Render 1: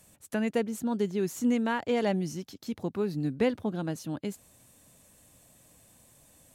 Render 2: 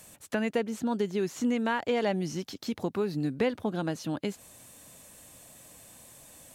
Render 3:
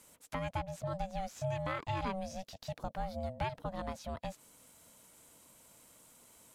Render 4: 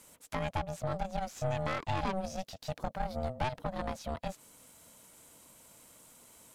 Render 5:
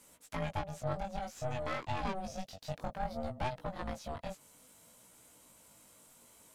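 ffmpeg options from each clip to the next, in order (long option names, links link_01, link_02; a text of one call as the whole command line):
ffmpeg -i in.wav -filter_complex "[0:a]acrossover=split=5400[link_01][link_02];[link_02]acompressor=threshold=-56dB:ratio=4:attack=1:release=60[link_03];[link_01][link_03]amix=inputs=2:normalize=0,lowshelf=frequency=300:gain=-7,acompressor=threshold=-38dB:ratio=2,volume=8.5dB" out.wav
ffmpeg -i in.wav -af "aeval=exprs='val(0)*sin(2*PI*380*n/s)':channel_layout=same,volume=-5.5dB" out.wav
ffmpeg -i in.wav -af "aeval=exprs='(tanh(39.8*val(0)+0.7)-tanh(0.7))/39.8':channel_layout=same,volume=7dB" out.wav
ffmpeg -i in.wav -af "flanger=delay=16:depth=5:speed=0.57" out.wav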